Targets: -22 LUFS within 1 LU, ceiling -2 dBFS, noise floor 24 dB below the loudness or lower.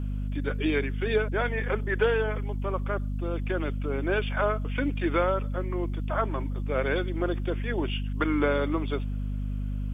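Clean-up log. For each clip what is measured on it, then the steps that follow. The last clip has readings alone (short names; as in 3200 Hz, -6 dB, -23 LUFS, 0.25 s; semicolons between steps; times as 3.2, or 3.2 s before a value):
hum 50 Hz; harmonics up to 250 Hz; hum level -28 dBFS; loudness -28.5 LUFS; peak -10.5 dBFS; loudness target -22.0 LUFS
-> de-hum 50 Hz, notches 5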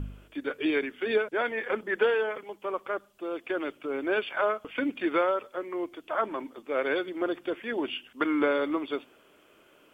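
hum none; loudness -30.0 LUFS; peak -11.0 dBFS; loudness target -22.0 LUFS
-> gain +8 dB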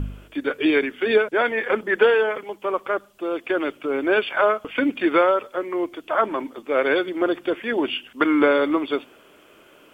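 loudness -22.0 LUFS; peak -3.0 dBFS; noise floor -52 dBFS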